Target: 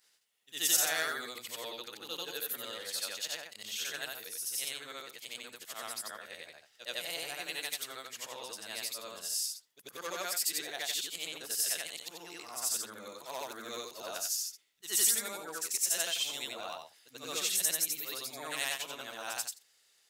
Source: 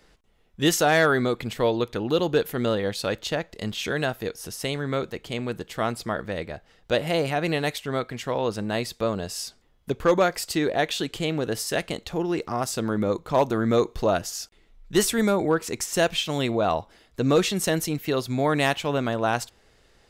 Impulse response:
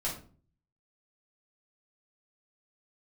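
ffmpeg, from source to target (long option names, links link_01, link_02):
-af "afftfilt=real='re':imag='-im':win_size=8192:overlap=0.75,aderivative,volume=5.5dB"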